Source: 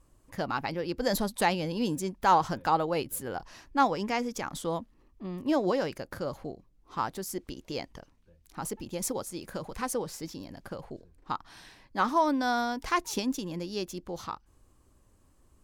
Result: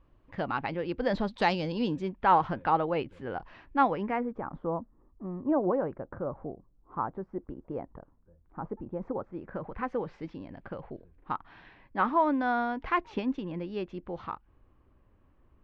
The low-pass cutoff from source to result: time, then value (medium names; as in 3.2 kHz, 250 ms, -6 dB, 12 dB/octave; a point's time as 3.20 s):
low-pass 24 dB/octave
1.25 s 3.3 kHz
1.52 s 5.6 kHz
2.19 s 2.9 kHz
3.89 s 2.9 kHz
4.41 s 1.3 kHz
8.95 s 1.3 kHz
10.17 s 2.7 kHz